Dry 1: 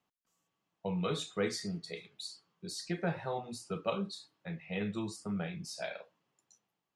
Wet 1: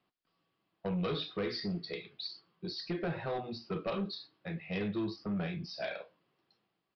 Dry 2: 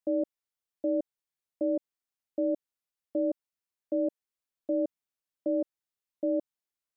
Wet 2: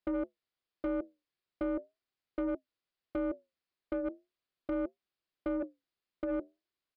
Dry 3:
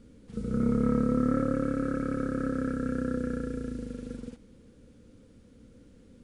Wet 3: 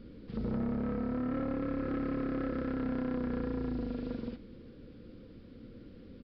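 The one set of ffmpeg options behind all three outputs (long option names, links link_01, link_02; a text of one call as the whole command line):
ffmpeg -i in.wav -af "equalizer=frequency=350:width=5.4:gain=6,acompressor=threshold=-29dB:ratio=10,flanger=delay=5.4:depth=6.6:regen=-73:speed=0.39:shape=triangular,aresample=11025,asoftclip=type=tanh:threshold=-36.5dB,aresample=44100,bandreject=frequency=880:width=12,volume=8dB" out.wav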